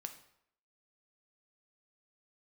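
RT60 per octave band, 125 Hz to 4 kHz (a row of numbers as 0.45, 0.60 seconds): 0.60, 0.65, 0.70, 0.70, 0.65, 0.55 seconds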